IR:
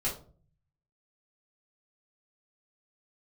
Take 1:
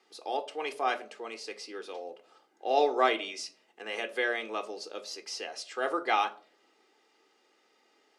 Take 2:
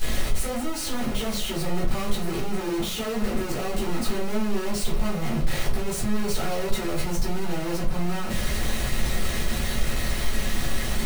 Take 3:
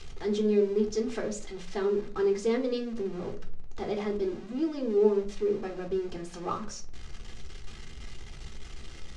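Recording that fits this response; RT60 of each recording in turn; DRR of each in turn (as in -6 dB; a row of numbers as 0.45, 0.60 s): 2; 0.45, 0.45, 0.45 s; 9.0, -6.5, 3.5 dB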